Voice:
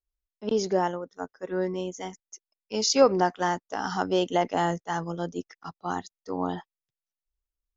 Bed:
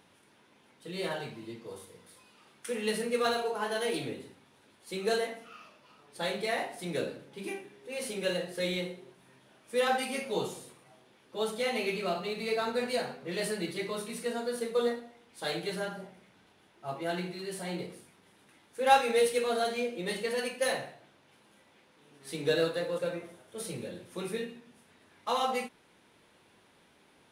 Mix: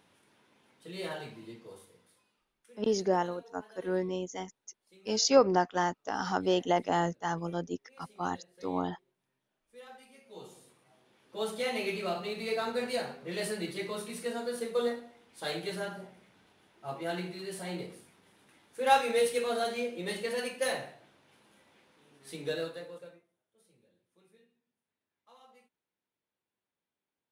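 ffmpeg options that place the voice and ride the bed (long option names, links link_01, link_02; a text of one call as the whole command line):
ffmpeg -i stem1.wav -i stem2.wav -filter_complex "[0:a]adelay=2350,volume=-3dB[link_01];[1:a]volume=18dB,afade=type=out:start_time=1.48:duration=0.99:silence=0.105925,afade=type=in:start_time=10.23:duration=1.29:silence=0.0841395,afade=type=out:start_time=21.91:duration=1.34:silence=0.0398107[link_02];[link_01][link_02]amix=inputs=2:normalize=0" out.wav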